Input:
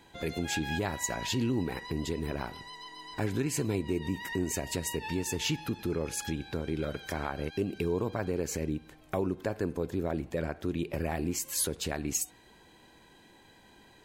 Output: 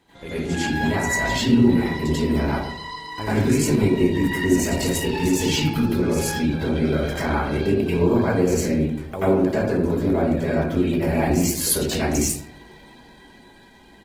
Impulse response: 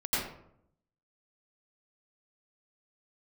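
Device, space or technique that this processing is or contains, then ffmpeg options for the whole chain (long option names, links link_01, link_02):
speakerphone in a meeting room: -filter_complex "[1:a]atrim=start_sample=2205[link_01];[0:a][link_01]afir=irnorm=-1:irlink=0,asplit=2[link_02][link_03];[link_03]adelay=150,highpass=300,lowpass=3400,asoftclip=type=hard:threshold=-16dB,volume=-22dB[link_04];[link_02][link_04]amix=inputs=2:normalize=0,dynaudnorm=framelen=160:gausssize=17:maxgain=3dB" -ar 48000 -c:a libopus -b:a 16k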